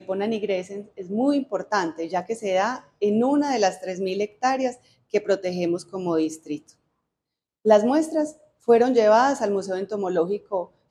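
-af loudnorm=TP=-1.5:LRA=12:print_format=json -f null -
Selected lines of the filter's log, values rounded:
"input_i" : "-23.1",
"input_tp" : "-3.8",
"input_lra" : "4.7",
"input_thresh" : "-33.4",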